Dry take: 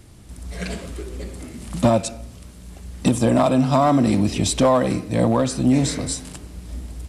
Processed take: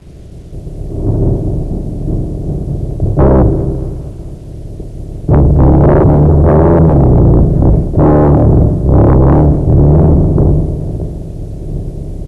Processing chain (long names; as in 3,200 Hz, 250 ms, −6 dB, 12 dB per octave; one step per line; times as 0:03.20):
compressor on every frequency bin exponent 0.4
low-pass filter 1,200 Hz 24 dB per octave
downward expander −12 dBFS
low-shelf EQ 180 Hz +10.5 dB
in parallel at −5 dB: gain into a clipping stage and back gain 5.5 dB
on the sum: bit reduction 9 bits
sine wavefolder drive 8 dB, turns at 4.5 dBFS
on a send: repeating echo 126 ms, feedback 58%, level −20 dB
on the sum: wrong playback speed 78 rpm record played at 45 rpm
level −7 dB